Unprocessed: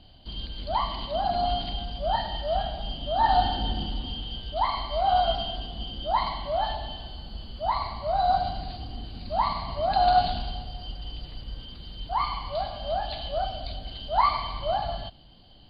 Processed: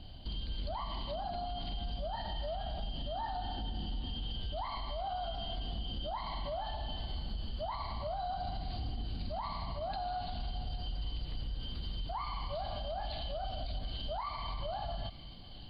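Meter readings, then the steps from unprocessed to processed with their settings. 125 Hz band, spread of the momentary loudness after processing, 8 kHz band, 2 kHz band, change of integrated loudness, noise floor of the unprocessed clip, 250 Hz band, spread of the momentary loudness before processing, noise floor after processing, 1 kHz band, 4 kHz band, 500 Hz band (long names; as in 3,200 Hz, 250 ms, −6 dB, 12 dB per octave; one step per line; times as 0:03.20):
−4.5 dB, 3 LU, can't be measured, −12.5 dB, −12.0 dB, −51 dBFS, −7.0 dB, 16 LU, −46 dBFS, −14.5 dB, −9.0 dB, −11.5 dB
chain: low-shelf EQ 190 Hz +6 dB
downward compressor, threshold −30 dBFS, peak gain reduction 14.5 dB
brickwall limiter −30.5 dBFS, peak gain reduction 9 dB
delay with a high-pass on its return 812 ms, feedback 75%, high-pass 2,600 Hz, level −11.5 dB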